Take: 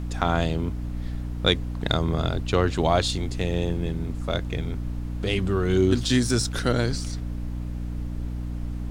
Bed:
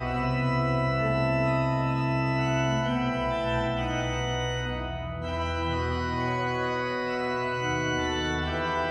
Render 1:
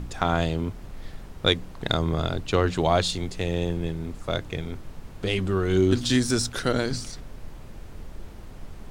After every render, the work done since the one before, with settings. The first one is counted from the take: de-hum 60 Hz, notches 5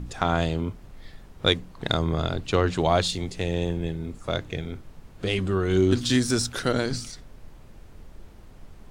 noise print and reduce 6 dB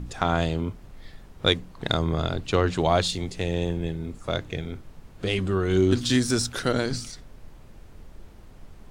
nothing audible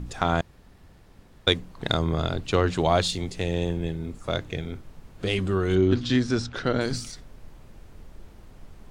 0.41–1.47 room tone; 5.75–6.81 air absorption 160 m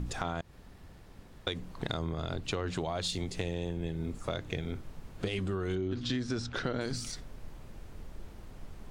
limiter -14.5 dBFS, peak gain reduction 9 dB; compressor 6:1, threshold -30 dBFS, peak gain reduction 10.5 dB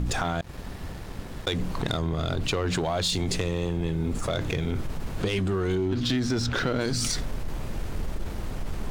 in parallel at -2 dB: negative-ratio compressor -41 dBFS, ratio -0.5; on the sum: sample leveller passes 2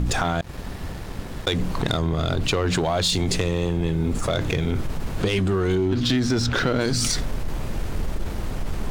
gain +4.5 dB

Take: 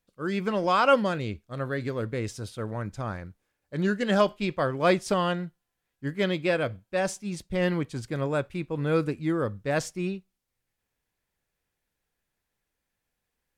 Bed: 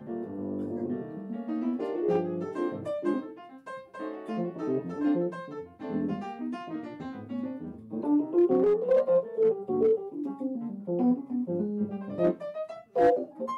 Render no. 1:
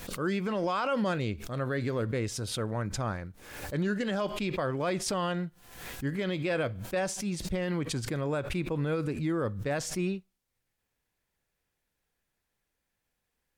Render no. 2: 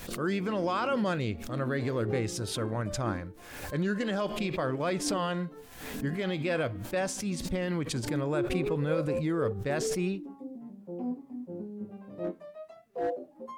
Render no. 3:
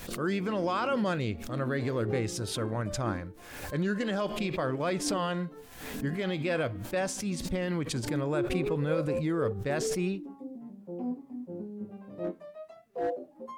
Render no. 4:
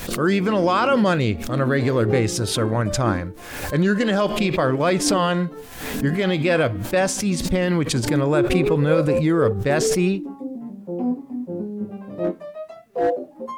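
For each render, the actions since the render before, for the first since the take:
limiter -21.5 dBFS, peak gain reduction 12 dB; backwards sustainer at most 64 dB/s
add bed -9.5 dB
nothing audible
gain +11 dB

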